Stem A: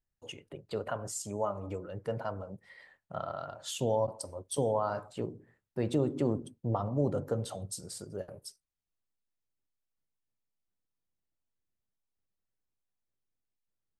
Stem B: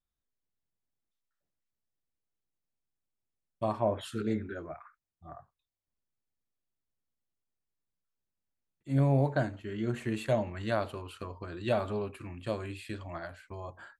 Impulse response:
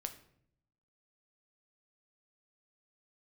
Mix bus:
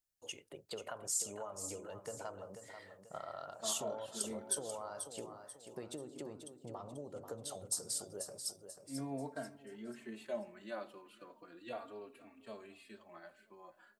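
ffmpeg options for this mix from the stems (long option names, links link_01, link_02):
-filter_complex "[0:a]acompressor=threshold=-36dB:ratio=10,bass=frequency=250:gain=-10,treble=frequency=4000:gain=10,volume=-3.5dB,asplit=2[link_01][link_02];[link_02]volume=-9dB[link_03];[1:a]highpass=frequency=200:width=0.5412,highpass=frequency=200:width=1.3066,asplit=2[link_04][link_05];[link_05]adelay=3.7,afreqshift=-0.35[link_06];[link_04][link_06]amix=inputs=2:normalize=1,volume=-13.5dB,asplit=3[link_07][link_08][link_09];[link_08]volume=-3.5dB[link_10];[link_09]volume=-18dB[link_11];[2:a]atrim=start_sample=2205[link_12];[link_10][link_12]afir=irnorm=-1:irlink=0[link_13];[link_03][link_11]amix=inputs=2:normalize=0,aecho=0:1:488|976|1464|1952|2440:1|0.39|0.152|0.0593|0.0231[link_14];[link_01][link_07][link_13][link_14]amix=inputs=4:normalize=0"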